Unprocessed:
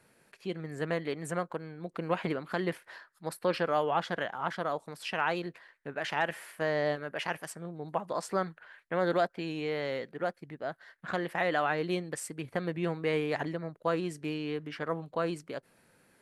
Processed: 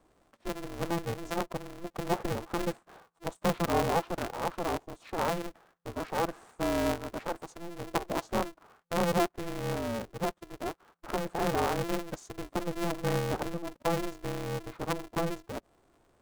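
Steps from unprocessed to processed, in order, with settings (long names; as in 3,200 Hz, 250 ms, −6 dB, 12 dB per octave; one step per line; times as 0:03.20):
high shelf with overshoot 1,500 Hz −11.5 dB, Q 1.5
formants moved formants −4 semitones
ring modulator with a square carrier 170 Hz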